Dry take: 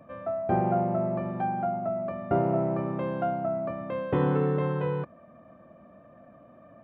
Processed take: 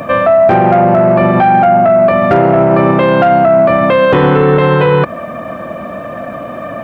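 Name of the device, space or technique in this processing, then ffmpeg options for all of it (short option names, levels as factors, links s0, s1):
mastering chain: -af "equalizer=f=440:t=o:w=1.2:g=2.5,acompressor=threshold=0.0355:ratio=2,asoftclip=type=tanh:threshold=0.0891,tiltshelf=f=1200:g=-6.5,asoftclip=type=hard:threshold=0.0501,alimiter=level_in=44.7:limit=0.891:release=50:level=0:latency=1,volume=0.891"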